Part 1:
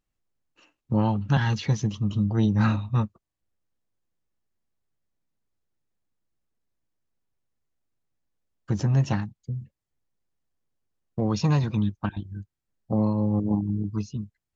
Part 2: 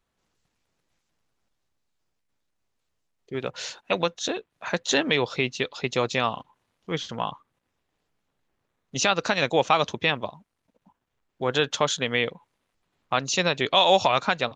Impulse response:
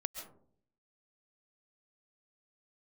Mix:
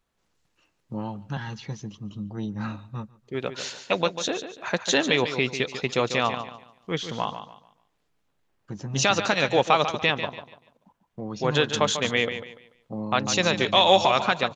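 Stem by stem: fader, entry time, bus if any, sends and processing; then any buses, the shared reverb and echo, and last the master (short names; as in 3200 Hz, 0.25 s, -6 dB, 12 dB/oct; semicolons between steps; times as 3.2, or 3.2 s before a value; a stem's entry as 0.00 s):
-7.5 dB, 0.00 s, no send, echo send -23 dB, bell 76 Hz -10 dB 1.2 oct
+0.5 dB, 0.00 s, no send, echo send -10 dB, dry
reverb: off
echo: feedback echo 0.145 s, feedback 30%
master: dry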